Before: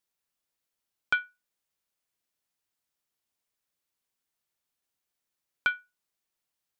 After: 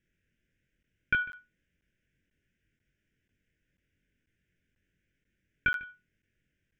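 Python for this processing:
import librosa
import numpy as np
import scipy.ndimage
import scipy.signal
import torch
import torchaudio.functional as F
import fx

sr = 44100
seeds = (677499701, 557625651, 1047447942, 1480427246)

p1 = scipy.signal.sosfilt(scipy.signal.ellip(3, 1.0, 40, [730.0, 1500.0], 'bandstop', fs=sr, output='sos'), x)
p2 = fx.low_shelf(p1, sr, hz=220.0, db=11.5)
p3 = fx.over_compress(p2, sr, threshold_db=-38.0, ratio=-1.0)
p4 = p2 + (p3 * librosa.db_to_amplitude(1.5))
p5 = fx.air_absorb(p4, sr, metres=200.0)
p6 = fx.fixed_phaser(p5, sr, hz=1800.0, stages=4)
p7 = fx.doubler(p6, sr, ms=22.0, db=-3.0)
p8 = p7 + 10.0 ** (-19.5 / 20.0) * np.pad(p7, (int(149 * sr / 1000.0), 0))[:len(p7)]
p9 = fx.buffer_crackle(p8, sr, first_s=0.83, period_s=0.49, block=512, kind='zero')
y = p9 * librosa.db_to_amplitude(2.0)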